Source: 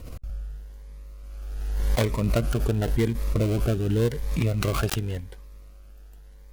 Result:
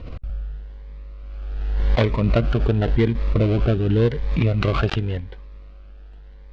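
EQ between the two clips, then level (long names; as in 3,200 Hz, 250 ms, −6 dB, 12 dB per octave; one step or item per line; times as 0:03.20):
low-pass filter 3,900 Hz 24 dB per octave
+5.0 dB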